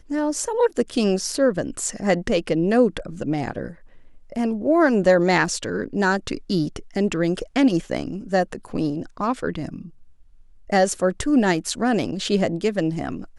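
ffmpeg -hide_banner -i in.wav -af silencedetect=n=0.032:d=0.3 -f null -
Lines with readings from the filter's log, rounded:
silence_start: 3.71
silence_end: 4.32 | silence_duration: 0.61
silence_start: 9.82
silence_end: 10.70 | silence_duration: 0.88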